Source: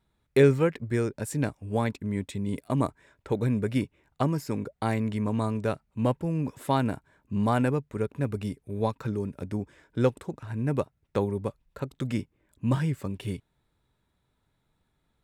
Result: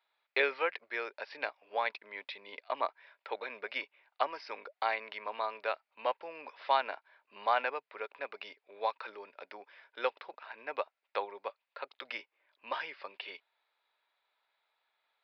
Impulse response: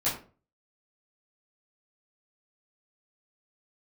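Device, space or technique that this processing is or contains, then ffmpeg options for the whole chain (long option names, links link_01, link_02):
musical greeting card: -af "aresample=11025,aresample=44100,highpass=frequency=630:width=0.5412,highpass=frequency=630:width=1.3066,equalizer=frequency=2400:width_type=o:width=0.56:gain=5"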